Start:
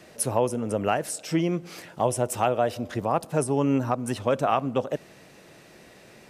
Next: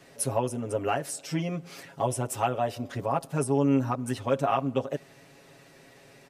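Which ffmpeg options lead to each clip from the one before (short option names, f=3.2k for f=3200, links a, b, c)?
-af "aecho=1:1:7.3:0.91,volume=-5.5dB"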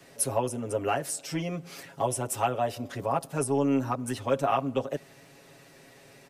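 -filter_complex "[0:a]highshelf=f=7.8k:g=4.5,acrossover=split=230|1100|1800[a][b][c][d];[a]asoftclip=type=tanh:threshold=-34dB[e];[e][b][c][d]amix=inputs=4:normalize=0"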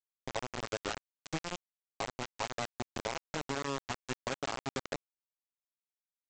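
-af "alimiter=limit=-19dB:level=0:latency=1:release=157,acompressor=threshold=-31dB:ratio=16,aresample=16000,acrusher=bits=4:mix=0:aa=0.000001,aresample=44100,volume=-2.5dB"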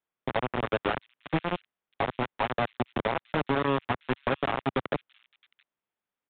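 -filter_complex "[0:a]acrossover=split=100|2000[a][b][c];[b]aeval=exprs='0.0708*sin(PI/2*1.78*val(0)/0.0708)':c=same[d];[c]aecho=1:1:669:0.126[e];[a][d][e]amix=inputs=3:normalize=0,aresample=8000,aresample=44100,volume=4dB"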